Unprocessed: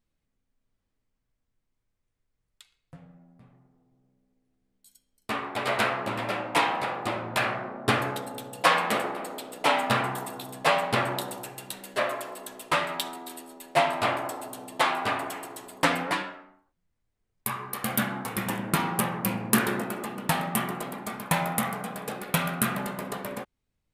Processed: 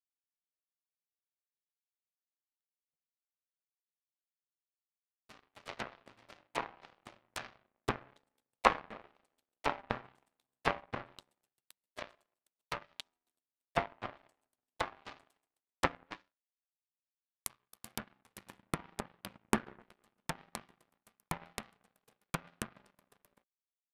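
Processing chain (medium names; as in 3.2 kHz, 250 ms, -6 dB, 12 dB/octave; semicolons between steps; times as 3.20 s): power-law waveshaper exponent 3; low-pass that closes with the level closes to 1.8 kHz, closed at -44 dBFS; trim +7 dB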